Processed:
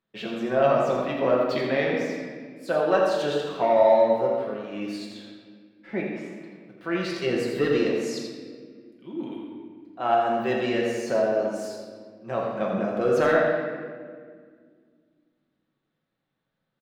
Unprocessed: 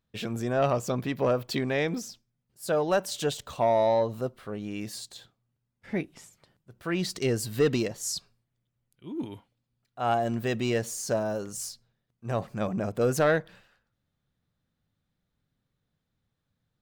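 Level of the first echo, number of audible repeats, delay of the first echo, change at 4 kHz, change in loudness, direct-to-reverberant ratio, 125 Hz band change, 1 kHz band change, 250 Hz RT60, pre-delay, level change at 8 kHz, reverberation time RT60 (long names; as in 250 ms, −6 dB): −7.0 dB, 1, 84 ms, 0.0 dB, +4.0 dB, −3.5 dB, −4.5 dB, +5.0 dB, 2.9 s, 5 ms, −9.0 dB, 1.8 s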